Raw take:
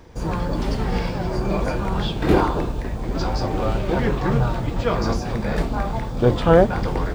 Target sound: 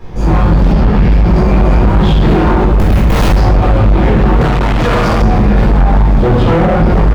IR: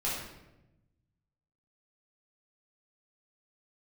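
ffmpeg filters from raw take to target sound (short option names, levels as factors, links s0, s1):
-filter_complex "[0:a]asplit=2[s0][s1];[s1]adelay=19,volume=0.562[s2];[s0][s2]amix=inputs=2:normalize=0,asettb=1/sr,asplit=3[s3][s4][s5];[s3]atrim=end=2.794[s6];[s4]atrim=start=2.79:end=3.27,asetpts=PTS-STARTPTS,afade=t=in:d=0.004:c=qsin,afade=t=out:st=0.476:d=0.004:c=qsin,aeval=exprs='(mod(6.31*val(0)+1,2)-1)/6.31':c=same[s7];[s5]atrim=start=3.266[s8];[s6][s7]acrossfade=d=0.004:c1=hsin:c2=qsin[s9];[s9][s8]acrossfade=d=0.004:c1=qsin:c2=hsin[s10];[1:a]atrim=start_sample=2205[s11];[s10][s11]afir=irnorm=-1:irlink=0,acompressor=threshold=0.316:ratio=6,asoftclip=type=hard:threshold=0.158,asettb=1/sr,asplit=3[s12][s13][s14];[s12]atrim=end=0.724[s15];[s13]atrim=start=0.72:end=1.12,asetpts=PTS-STARTPTS,afade=t=in:d=0.004:c=qsin,afade=t=out:st=0.396:d=0.004:c=qsin,highshelf=f=4700:g=-8[s16];[s14]atrim=start=1.116[s17];[s15][s16]acrossfade=d=0.004:c1=hsin:c2=qsin[s18];[s18][s17]acrossfade=d=0.004:c1=qsin:c2=hsin,asettb=1/sr,asplit=3[s19][s20][s21];[s19]atrim=end=4.414[s22];[s20]atrim=start=4.41:end=5.22,asetpts=PTS-STARTPTS,afade=t=in:d=0.004:c=qsin,afade=t=out:st=0.806:d=0.004:c=qsin,asplit=2[s23][s24];[s24]highpass=f=720:p=1,volume=25.1,asoftclip=type=tanh:threshold=0.158[s25];[s23][s25]amix=inputs=2:normalize=0,lowpass=f=4600:p=1,volume=0.501[s26];[s21]atrim=start=5.216[s27];[s22][s26]acrossfade=d=0.004:c1=hsin:c2=qsin[s28];[s28][s27]acrossfade=d=0.004:c1=qsin:c2=hsin,bass=f=250:g=4,treble=f=4000:g=-7,volume=2.37"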